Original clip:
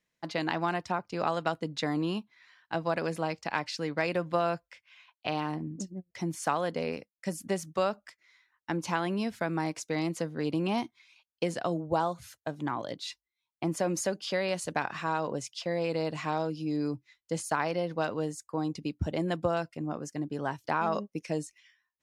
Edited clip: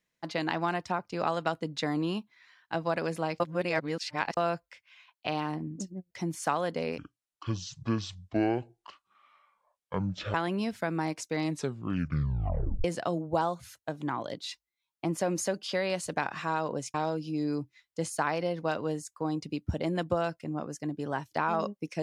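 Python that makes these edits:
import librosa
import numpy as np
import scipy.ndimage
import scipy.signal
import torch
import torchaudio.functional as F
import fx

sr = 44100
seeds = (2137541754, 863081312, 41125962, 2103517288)

y = fx.edit(x, sr, fx.reverse_span(start_s=3.4, length_s=0.97),
    fx.speed_span(start_s=6.98, length_s=1.95, speed=0.58),
    fx.tape_stop(start_s=10.0, length_s=1.43),
    fx.cut(start_s=15.53, length_s=0.74), tone=tone)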